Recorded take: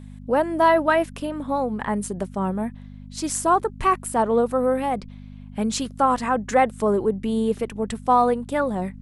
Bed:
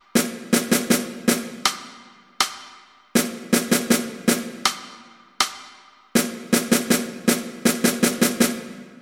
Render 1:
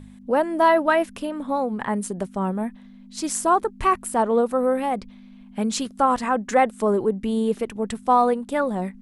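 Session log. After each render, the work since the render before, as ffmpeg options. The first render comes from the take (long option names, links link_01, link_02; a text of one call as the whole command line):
ffmpeg -i in.wav -af "bandreject=frequency=50:width_type=h:width=4,bandreject=frequency=100:width_type=h:width=4,bandreject=frequency=150:width_type=h:width=4" out.wav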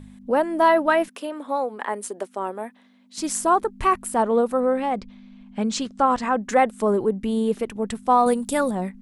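ffmpeg -i in.wav -filter_complex "[0:a]asettb=1/sr,asplit=3[link_01][link_02][link_03];[link_01]atrim=end=1.084[link_04];[link_02]atrim=start=1.08:end=3.18,asetpts=PTS-STARTPTS,afade=type=in:duration=0.004:curve=qsin,afade=type=out:start_time=2.096:duration=0.004:curve=qsin,highpass=frequency=320:width=0.5412,highpass=frequency=320:width=1.3066[link_05];[link_03]atrim=start=3.176[link_06];[link_04][link_05]acrossfade=duration=0.004:curve1=hsin:curve2=qsin[link_07];[link_07][link_06]acrossfade=duration=0.004:curve1=qsin:curve2=hsin,asettb=1/sr,asplit=3[link_08][link_09][link_10];[link_08]atrim=end=4.604[link_11];[link_09]atrim=start=4.6:end=6.42,asetpts=PTS-STARTPTS,afade=type=in:duration=0.004:curve=qsin,afade=type=out:start_time=1.816:duration=0.004:curve=qsin,lowpass=frequency=7700:width=0.5412,lowpass=frequency=7700:width=1.3066[link_12];[link_10]atrim=start=6.416[link_13];[link_11][link_12]acrossfade=duration=0.004:curve1=hsin:curve2=qsin[link_14];[link_14][link_13]acrossfade=duration=0.004:curve1=qsin:curve2=hsin,asettb=1/sr,asplit=3[link_15][link_16][link_17];[link_15]atrim=end=8.264[link_18];[link_16]atrim=start=8.26:end=8.71,asetpts=PTS-STARTPTS,afade=type=in:duration=0.004:curve=qsin,afade=type=out:start_time=0.446:duration=0.004:curve=qsin,bass=frequency=250:gain=6,treble=frequency=4000:gain=15[link_19];[link_17]atrim=start=8.706[link_20];[link_18][link_19]acrossfade=duration=0.004:curve1=hsin:curve2=qsin[link_21];[link_21][link_20]acrossfade=duration=0.004:curve1=qsin:curve2=hsin" out.wav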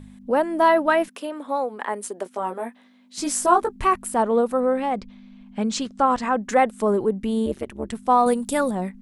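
ffmpeg -i in.wav -filter_complex "[0:a]asettb=1/sr,asplit=3[link_01][link_02][link_03];[link_01]atrim=end=2.244[link_04];[link_02]atrim=start=2.24:end=3.76,asetpts=PTS-STARTPTS,afade=type=in:duration=0.004:curve=qsin,afade=type=out:start_time=1.516:duration=0.004:curve=qsin,asplit=2[link_05][link_06];[link_06]adelay=17,volume=-3dB[link_07];[link_05][link_07]amix=inputs=2:normalize=0,atrim=end_sample=67032[link_08];[link_03]atrim=start=3.756[link_09];[link_04][link_08]acrossfade=duration=0.004:curve1=hsin:curve2=qsin[link_10];[link_10][link_09]acrossfade=duration=0.004:curve1=qsin:curve2=hsin,asettb=1/sr,asplit=3[link_11][link_12][link_13];[link_11]atrim=end=7.464[link_14];[link_12]atrim=start=7.46:end=7.93,asetpts=PTS-STARTPTS,afade=type=in:duration=0.004:curve=qsin,afade=type=out:start_time=0.466:duration=0.004:curve=qsin,tremolo=f=140:d=0.947[link_15];[link_13]atrim=start=7.926[link_16];[link_14][link_15]acrossfade=duration=0.004:curve1=hsin:curve2=qsin[link_17];[link_17][link_16]acrossfade=duration=0.004:curve1=qsin:curve2=hsin" out.wav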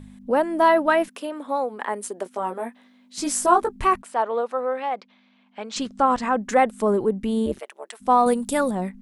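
ffmpeg -i in.wav -filter_complex "[0:a]asplit=3[link_01][link_02][link_03];[link_01]afade=type=out:start_time=4.01:duration=0.02[link_04];[link_02]highpass=570,lowpass=4700,afade=type=in:start_time=4.01:duration=0.02,afade=type=out:start_time=5.75:duration=0.02[link_05];[link_03]afade=type=in:start_time=5.75:duration=0.02[link_06];[link_04][link_05][link_06]amix=inputs=3:normalize=0,asplit=3[link_07][link_08][link_09];[link_07]afade=type=out:start_time=7.58:duration=0.02[link_10];[link_08]highpass=frequency=580:width=0.5412,highpass=frequency=580:width=1.3066,afade=type=in:start_time=7.58:duration=0.02,afade=type=out:start_time=8:duration=0.02[link_11];[link_09]afade=type=in:start_time=8:duration=0.02[link_12];[link_10][link_11][link_12]amix=inputs=3:normalize=0" out.wav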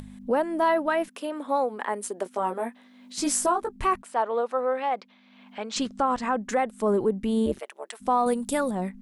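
ffmpeg -i in.wav -af "acompressor=mode=upward:threshold=-39dB:ratio=2.5,alimiter=limit=-14dB:level=0:latency=1:release=496" out.wav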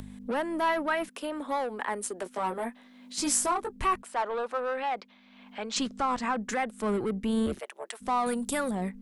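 ffmpeg -i in.wav -filter_complex "[0:a]acrossover=split=260|1000|3100[link_01][link_02][link_03][link_04];[link_01]tremolo=f=250:d=0.261[link_05];[link_02]asoftclip=type=tanh:threshold=-32dB[link_06];[link_05][link_06][link_03][link_04]amix=inputs=4:normalize=0" out.wav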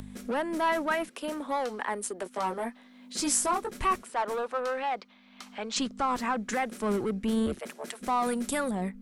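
ffmpeg -i in.wav -i bed.wav -filter_complex "[1:a]volume=-27.5dB[link_01];[0:a][link_01]amix=inputs=2:normalize=0" out.wav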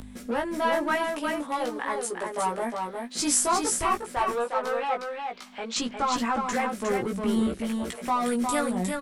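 ffmpeg -i in.wav -filter_complex "[0:a]asplit=2[link_01][link_02];[link_02]adelay=17,volume=-3dB[link_03];[link_01][link_03]amix=inputs=2:normalize=0,asplit=2[link_04][link_05];[link_05]aecho=0:1:358:0.596[link_06];[link_04][link_06]amix=inputs=2:normalize=0" out.wav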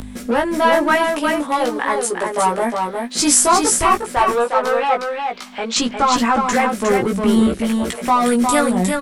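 ffmpeg -i in.wav -af "volume=10.5dB,alimiter=limit=-1dB:level=0:latency=1" out.wav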